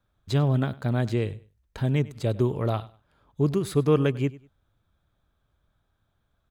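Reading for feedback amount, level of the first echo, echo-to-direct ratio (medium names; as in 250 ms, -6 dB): 25%, -20.0 dB, -19.5 dB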